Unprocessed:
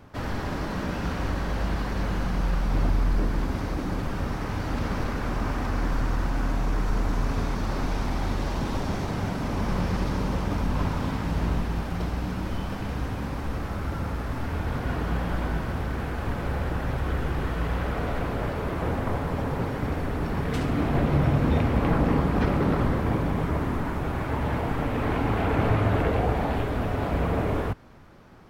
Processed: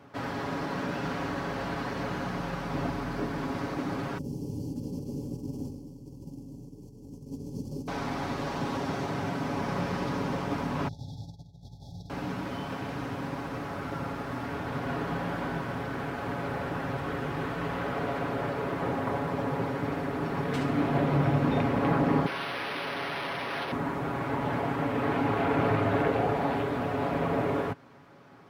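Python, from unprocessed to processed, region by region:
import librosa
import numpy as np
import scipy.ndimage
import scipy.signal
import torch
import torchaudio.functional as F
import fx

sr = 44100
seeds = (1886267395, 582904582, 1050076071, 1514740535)

y = fx.chain(x, sr, fx.ellip_bandstop(low_hz=650.0, high_hz=3900.0, order=3, stop_db=60),
    fx.over_compress(threshold_db=-28.0, ratio=-0.5),
    fx.fixed_phaser(hz=1600.0, stages=4), at=(4.18, 7.88))
y = fx.chain(y, sr, fx.curve_eq(hz=(110.0, 170.0, 320.0, 5600.0, 8200.0), db=(0, -11, -24, -5, -13)),
    fx.over_compress(threshold_db=-31.0, ratio=-0.5),
    fx.brickwall_bandstop(low_hz=910.0, high_hz=3300.0), at=(10.88, 12.1))
y = fx.chain(y, sr, fx.high_shelf(hz=4500.0, db=10.5),
    fx.overflow_wrap(gain_db=26.5),
    fx.resample_linear(factor=6), at=(22.26, 23.72))
y = scipy.signal.sosfilt(scipy.signal.bessel(2, 180.0, 'highpass', norm='mag', fs=sr, output='sos'), y)
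y = fx.high_shelf(y, sr, hz=5700.0, db=-6.5)
y = y + 0.48 * np.pad(y, (int(7.2 * sr / 1000.0), 0))[:len(y)]
y = F.gain(torch.from_numpy(y), -1.0).numpy()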